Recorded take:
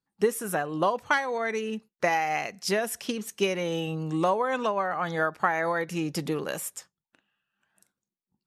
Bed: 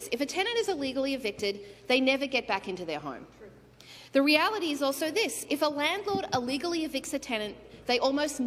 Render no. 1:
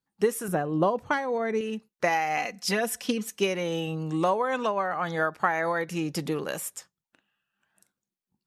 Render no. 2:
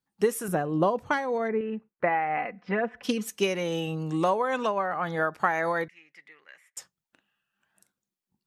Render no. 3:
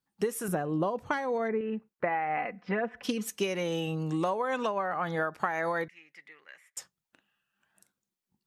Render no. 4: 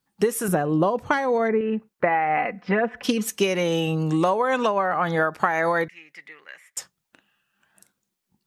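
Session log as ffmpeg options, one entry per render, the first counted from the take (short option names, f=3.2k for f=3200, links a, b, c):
-filter_complex "[0:a]asettb=1/sr,asplit=3[a][b][c];[a]atrim=end=0.484[d];[b]atrim=start=0.48:end=1.61,asetpts=PTS-STARTPTS,afade=t=in:d=0.004:c=qsin,afade=t=out:st=1.126:d=0.004:c=qsin,tiltshelf=f=730:g=7[e];[c]atrim=start=1.606[f];[d][e]acrossfade=d=0.004:c1=hsin:c2=qsin[g];[g][f]acrossfade=d=0.004:c1=qsin:c2=hsin,asettb=1/sr,asplit=3[h][i][j];[h]atrim=end=2.374[k];[i]atrim=start=2.37:end=3.36,asetpts=PTS-STARTPTS,afade=t=in:d=0.004:c=qsin,afade=t=out:st=0.986:d=0.004:c=qsin,aecho=1:1:4:0.65,atrim=end_sample=43659[l];[j]atrim=start=3.356[m];[k][l]acrossfade=d=0.004:c1=hsin:c2=qsin[n];[n][m]acrossfade=d=0.004:c1=qsin:c2=hsin"
-filter_complex "[0:a]asplit=3[a][b][c];[a]afade=t=out:st=1.47:d=0.02[d];[b]lowpass=f=2.1k:w=0.5412,lowpass=f=2.1k:w=1.3066,afade=t=in:st=1.47:d=0.02,afade=t=out:st=3.03:d=0.02[e];[c]afade=t=in:st=3.03:d=0.02[f];[d][e][f]amix=inputs=3:normalize=0,asettb=1/sr,asplit=3[g][h][i];[g]atrim=end=4.784[j];[h]atrim=start=4.78:end=5.34,asetpts=PTS-STARTPTS,afade=t=in:d=0.004:c=qsin,afade=t=out:st=0.556:d=0.004:c=qsin,equalizer=f=6.1k:w=0.82:g=-8[k];[i]atrim=start=5.336[l];[j][k]acrossfade=d=0.004:c1=hsin:c2=qsin[m];[m][l]acrossfade=d=0.004:c1=qsin:c2=hsin,asettb=1/sr,asplit=3[n][o][p];[n]atrim=end=5.884[q];[o]atrim=start=5.88:end=6.77,asetpts=PTS-STARTPTS,afade=t=in:d=0.004:c=qsin,afade=t=out:st=0.886:d=0.004:c=qsin,bandpass=f=2k:t=q:w=10[r];[p]atrim=start=6.766[s];[q][r]acrossfade=d=0.004:c1=hsin:c2=qsin[t];[t][s]acrossfade=d=0.004:c1=qsin:c2=hsin"
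-af "acompressor=threshold=-27dB:ratio=3"
-af "volume=8.5dB"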